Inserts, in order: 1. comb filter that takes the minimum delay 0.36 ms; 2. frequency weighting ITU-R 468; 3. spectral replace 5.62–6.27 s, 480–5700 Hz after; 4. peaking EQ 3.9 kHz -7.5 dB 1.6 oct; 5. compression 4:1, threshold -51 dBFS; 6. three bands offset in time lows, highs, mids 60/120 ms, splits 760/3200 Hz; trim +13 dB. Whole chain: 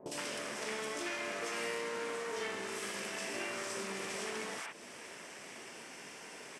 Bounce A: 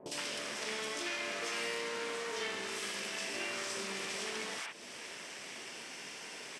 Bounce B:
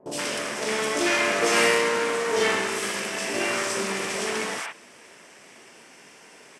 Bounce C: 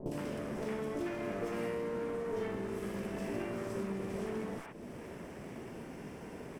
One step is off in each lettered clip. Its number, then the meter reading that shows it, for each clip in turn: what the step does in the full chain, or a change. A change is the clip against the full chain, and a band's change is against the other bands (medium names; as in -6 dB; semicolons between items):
4, 4 kHz band +5.5 dB; 5, mean gain reduction 9.5 dB; 2, 125 Hz band +18.0 dB